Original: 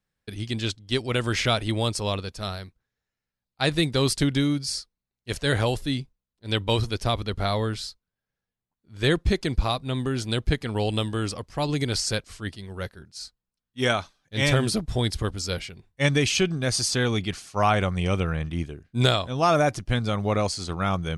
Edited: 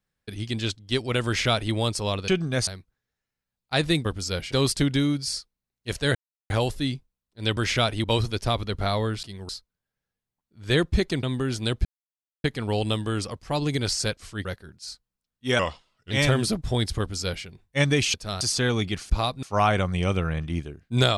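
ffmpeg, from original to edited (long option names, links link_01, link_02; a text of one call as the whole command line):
ffmpeg -i in.wav -filter_complex "[0:a]asplit=19[link_01][link_02][link_03][link_04][link_05][link_06][link_07][link_08][link_09][link_10][link_11][link_12][link_13][link_14][link_15][link_16][link_17][link_18][link_19];[link_01]atrim=end=2.282[link_20];[link_02]atrim=start=16.378:end=16.772[link_21];[link_03]atrim=start=2.548:end=3.932[link_22];[link_04]atrim=start=15.228:end=15.702[link_23];[link_05]atrim=start=3.928:end=5.56,asetpts=PTS-STARTPTS,afade=type=out:start_time=1.628:duration=0.004:curve=hsin,apad=pad_dur=0.35[link_24];[link_06]atrim=start=5.56:end=6.632,asetpts=PTS-STARTPTS,afade=type=in:duration=0.004:curve=hsin[link_25];[link_07]atrim=start=1.258:end=1.732[link_26];[link_08]atrim=start=6.628:end=7.822[link_27];[link_09]atrim=start=12.518:end=12.782[link_28];[link_10]atrim=start=7.818:end=9.562[link_29];[link_11]atrim=start=9.888:end=10.51,asetpts=PTS-STARTPTS,afade=type=out:start_time=0.618:duration=0.004:curve=hsin,apad=pad_dur=0.59[link_30];[link_12]atrim=start=10.51:end=12.522,asetpts=PTS-STARTPTS,afade=type=in:duration=0.004:curve=hsin[link_31];[link_13]atrim=start=12.778:end=13.924[link_32];[link_14]atrim=start=13.92:end=14.35,asetpts=PTS-STARTPTS,asetrate=36603,aresample=44100[link_33];[link_15]atrim=start=14.346:end=16.382[link_34];[link_16]atrim=start=2.278:end=2.552[link_35];[link_17]atrim=start=16.768:end=17.462[link_36];[link_18]atrim=start=9.558:end=9.892[link_37];[link_19]atrim=start=17.458[link_38];[link_20][link_21]acrossfade=duration=0.004:curve1=hsin:curve2=hsin[link_39];[link_39][link_22]acrossfade=duration=0.004:curve1=hsin:curve2=hsin[link_40];[link_40][link_23]acrossfade=duration=0.004:curve1=hsin:curve2=hsin[link_41];[link_24][link_25]concat=n=2:v=0:a=1[link_42];[link_41][link_42]acrossfade=duration=0.004:curve1=hsin:curve2=hsin[link_43];[link_43][link_26]acrossfade=duration=0.004:curve1=hsin:curve2=hsin[link_44];[link_44][link_27]acrossfade=duration=0.004:curve1=hsin:curve2=hsin[link_45];[link_45][link_28]acrossfade=duration=0.004:curve1=hsin:curve2=hsin[link_46];[link_46][link_29]acrossfade=duration=0.004:curve1=hsin:curve2=hsin[link_47];[link_30][link_31]concat=n=2:v=0:a=1[link_48];[link_47][link_48]acrossfade=duration=0.004:curve1=hsin:curve2=hsin[link_49];[link_49][link_32]acrossfade=duration=0.004:curve1=hsin:curve2=hsin[link_50];[link_50][link_33]acrossfade=duration=0.004:curve1=hsin:curve2=hsin[link_51];[link_51][link_34]acrossfade=duration=0.004:curve1=hsin:curve2=hsin[link_52];[link_52][link_35]acrossfade=duration=0.004:curve1=hsin:curve2=hsin[link_53];[link_53][link_36]acrossfade=duration=0.004:curve1=hsin:curve2=hsin[link_54];[link_54][link_37]acrossfade=duration=0.004:curve1=hsin:curve2=hsin[link_55];[link_55][link_38]acrossfade=duration=0.004:curve1=hsin:curve2=hsin" out.wav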